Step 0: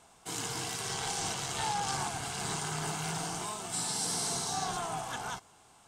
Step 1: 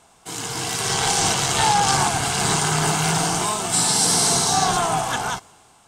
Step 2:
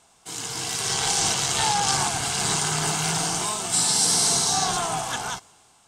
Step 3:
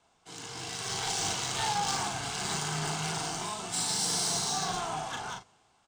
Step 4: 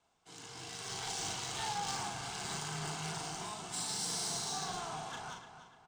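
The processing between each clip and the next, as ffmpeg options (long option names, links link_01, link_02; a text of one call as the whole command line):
ffmpeg -i in.wav -af "dynaudnorm=framelen=130:gausssize=11:maxgain=9.5dB,volume=5.5dB" out.wav
ffmpeg -i in.wav -af "equalizer=frequency=5800:width_type=o:width=2.3:gain=5.5,volume=-6.5dB" out.wav
ffmpeg -i in.wav -filter_complex "[0:a]acrossover=split=290|1400[link_01][link_02][link_03];[link_03]adynamicsmooth=sensitivity=2:basefreq=5500[link_04];[link_01][link_02][link_04]amix=inputs=3:normalize=0,asplit=2[link_05][link_06];[link_06]adelay=39,volume=-6dB[link_07];[link_05][link_07]amix=inputs=2:normalize=0,volume=-8dB" out.wav
ffmpeg -i in.wav -filter_complex "[0:a]asplit=2[link_01][link_02];[link_02]adelay=296,lowpass=frequency=4700:poles=1,volume=-10dB,asplit=2[link_03][link_04];[link_04]adelay=296,lowpass=frequency=4700:poles=1,volume=0.44,asplit=2[link_05][link_06];[link_06]adelay=296,lowpass=frequency=4700:poles=1,volume=0.44,asplit=2[link_07][link_08];[link_08]adelay=296,lowpass=frequency=4700:poles=1,volume=0.44,asplit=2[link_09][link_10];[link_10]adelay=296,lowpass=frequency=4700:poles=1,volume=0.44[link_11];[link_01][link_03][link_05][link_07][link_09][link_11]amix=inputs=6:normalize=0,volume=-7.5dB" out.wav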